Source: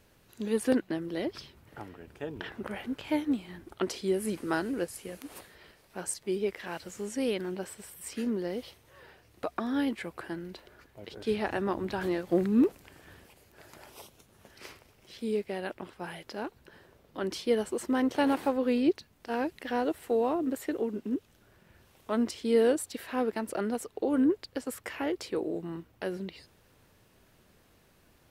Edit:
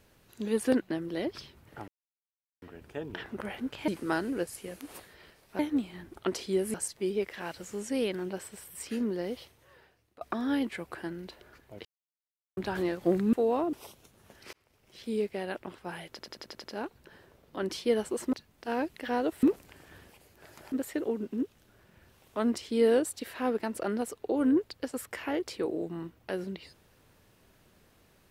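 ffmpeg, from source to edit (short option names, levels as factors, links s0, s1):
-filter_complex "[0:a]asplit=20[s0][s1][s2][s3][s4][s5][s6][s7][s8][s9][s10][s11][s12][s13][s14][s15][s16][s17][s18][s19];[s0]atrim=end=1.88,asetpts=PTS-STARTPTS,afade=t=out:st=1.876:d=0.004:c=hsin,apad=pad_dur=0.74[s20];[s1]atrim=start=1.88:end=3.142,asetpts=PTS-STARTPTS,afade=t=in:d=0.004:c=hsin[s21];[s2]atrim=start=4.288:end=6.002[s22];[s3]atrim=start=3.138:end=4.292[s23];[s4]atrim=start=5.998:end=9.47,asetpts=PTS-STARTPTS,afade=t=out:st=2.612:d=0.86:silence=0.0707946[s24];[s5]atrim=start=9.47:end=11.11,asetpts=PTS-STARTPTS,afade=t=in:d=0.004:c=hsin:silence=0.0707946,afade=t=out:st=1.636:d=0.004:c=hsin[s25];[s6]atrim=start=11.11:end=11.83,asetpts=PTS-STARTPTS,volume=0[s26];[s7]atrim=start=11.83:end=12.592,asetpts=PTS-STARTPTS,afade=t=in:d=0.004:c=hsin[s27];[s8]atrim=start=20.048:end=20.452[s28];[s9]atrim=start=13.878:end=14.68,asetpts=PTS-STARTPTS,afade=t=out:st=0.798:d=0.004:c=hsin[s29];[s10]atrim=start=14.68:end=16.342,asetpts=PTS-STARTPTS,afade=t=in:d=0.52[s30];[s11]atrim=start=16.248:end=16.342[s31];[s12]atrim=start=16.248:end=16.342[s32];[s13]atrim=start=16.248:end=16.342[s33];[s14]atrim=start=16.248:end=16.342[s34];[s15]atrim=start=16.248:end=16.342[s35];[s16]atrim=start=16.248:end=17.942[s36];[s17]atrim=start=18.948:end=20.052[s37];[s18]atrim=start=12.588:end=13.882[s38];[s19]atrim=start=20.448[s39];[s20][s21]concat=n=2:v=0:a=1[s40];[s40][s22]acrossfade=d=0.004:c1=hsin:c2=hsin[s41];[s41][s23]acrossfade=d=0.004:c1=hsin:c2=hsin[s42];[s24][s25][s26][s27]concat=n=4:v=0:a=1[s43];[s42][s43]acrossfade=d=0.004:c1=hsin:c2=hsin[s44];[s44][s28]acrossfade=d=0.004:c1=hsin:c2=hsin[s45];[s29][s30]concat=n=2:v=0:a=1[s46];[s45][s46]acrossfade=d=0.004:c1=hsin:c2=hsin[s47];[s47][s31]acrossfade=d=0.004:c1=hsin:c2=hsin[s48];[s48][s32]acrossfade=d=0.004:c1=hsin:c2=hsin[s49];[s49][s33]acrossfade=d=0.004:c1=hsin:c2=hsin[s50];[s50][s34]acrossfade=d=0.004:c1=hsin:c2=hsin[s51];[s51][s35]acrossfade=d=0.004:c1=hsin:c2=hsin[s52];[s52][s36]acrossfade=d=0.004:c1=hsin:c2=hsin[s53];[s53][s37]acrossfade=d=0.004:c1=hsin:c2=hsin[s54];[s54][s38]acrossfade=d=0.004:c1=hsin:c2=hsin[s55];[s55][s39]acrossfade=d=0.004:c1=hsin:c2=hsin"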